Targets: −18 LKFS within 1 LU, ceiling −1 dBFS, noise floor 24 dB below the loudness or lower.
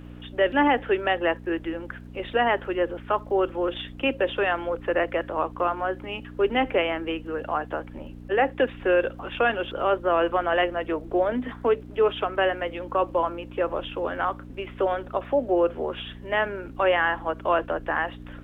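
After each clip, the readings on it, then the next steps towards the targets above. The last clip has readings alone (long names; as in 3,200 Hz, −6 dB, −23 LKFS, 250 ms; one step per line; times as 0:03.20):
crackle rate 32 per second; mains hum 60 Hz; hum harmonics up to 300 Hz; level of the hum −39 dBFS; integrated loudness −25.5 LKFS; sample peak −10.0 dBFS; target loudness −18.0 LKFS
→ click removal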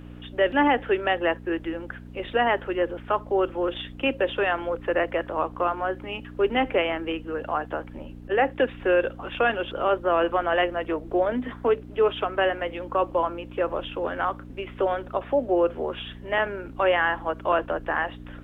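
crackle rate 0 per second; mains hum 60 Hz; hum harmonics up to 300 Hz; level of the hum −40 dBFS
→ hum removal 60 Hz, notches 5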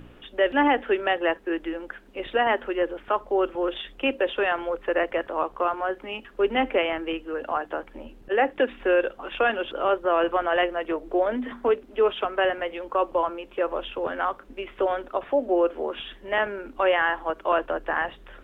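mains hum none found; integrated loudness −25.5 LKFS; sample peak −10.5 dBFS; target loudness −18.0 LKFS
→ level +7.5 dB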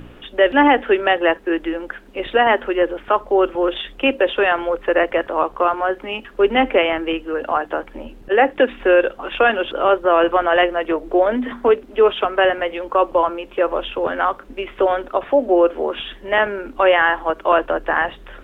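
integrated loudness −18.0 LKFS; sample peak −3.0 dBFS; background noise floor −43 dBFS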